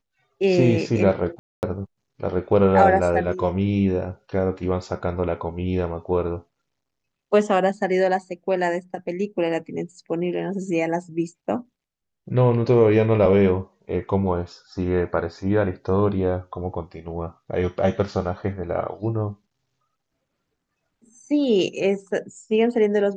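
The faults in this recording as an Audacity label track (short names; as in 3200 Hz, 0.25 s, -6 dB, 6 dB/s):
1.390000	1.630000	gap 0.239 s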